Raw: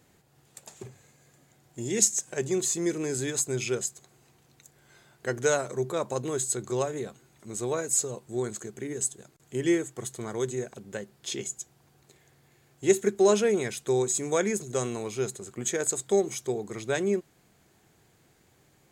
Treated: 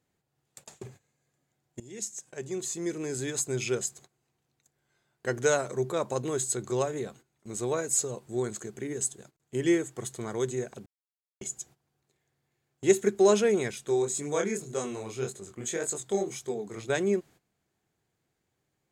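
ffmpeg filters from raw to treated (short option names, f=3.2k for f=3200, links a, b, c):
-filter_complex "[0:a]asettb=1/sr,asplit=3[a][b][c];[a]atrim=end=13.714[d];[b]atrim=start=13.71:end=16.9,asetpts=PTS-STARTPTS,afade=t=in:d=0.004:c=qsin,afade=t=out:st=3.186:d=0.004:c=qsin,flanger=delay=20:depth=6.5:speed=1.8[e];[c]atrim=start=16.896[f];[d][e]acrossfade=d=0.004:c1=hsin:c2=qsin[g];[g][f]acrossfade=d=0.004:c1=qsin:c2=hsin,asplit=4[h][i][j][k];[h]atrim=end=1.8,asetpts=PTS-STARTPTS,afade=t=out:st=1.796:d=0.004:c=hsin:silence=0.125893[l];[i]atrim=start=1.8:end=10.86,asetpts=PTS-STARTPTS,afade=t=in:d=1.95:silence=0.125893,afade=t=out:st=9.056:d=0.004:c=hsin[m];[j]atrim=start=10.86:end=11.41,asetpts=PTS-STARTPTS,volume=0[n];[k]atrim=start=11.41,asetpts=PTS-STARTPTS,afade=t=in:d=0.004:c=hsin[o];[l][m][n][o]concat=n=4:v=0:a=1,agate=range=-16dB:threshold=-50dB:ratio=16:detection=peak,highshelf=f=9.4k:g=-3.5"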